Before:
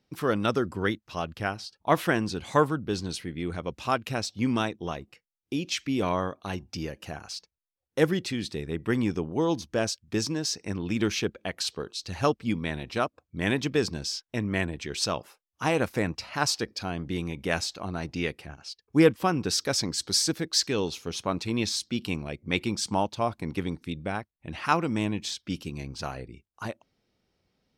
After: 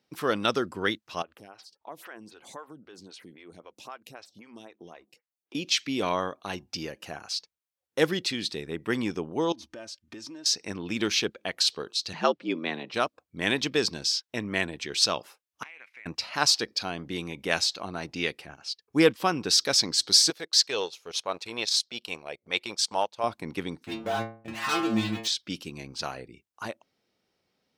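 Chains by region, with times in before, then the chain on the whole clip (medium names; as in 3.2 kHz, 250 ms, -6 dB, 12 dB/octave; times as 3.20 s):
1.22–5.55 s: compression 4:1, threshold -39 dBFS + bass shelf 110 Hz -7.5 dB + lamp-driven phase shifter 3.8 Hz
9.52–10.46 s: treble shelf 8.4 kHz -10 dB + comb 3.3 ms, depth 61% + compression, threshold -39 dBFS
12.13–12.94 s: low-pass 3.8 kHz + frequency shift +78 Hz
15.63–16.06 s: band-pass filter 2.2 kHz, Q 6.4 + compression, threshold -43 dBFS
20.30–23.24 s: transient shaper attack -5 dB, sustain -12 dB + resonant low shelf 370 Hz -8.5 dB, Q 1.5
23.84–25.28 s: low-pass 2.3 kHz 6 dB/octave + waveshaping leveller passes 5 + inharmonic resonator 110 Hz, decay 0.45 s, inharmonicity 0.002
whole clip: high-pass 320 Hz 6 dB/octave; dynamic bell 4.1 kHz, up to +7 dB, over -45 dBFS, Q 1.2; trim +1 dB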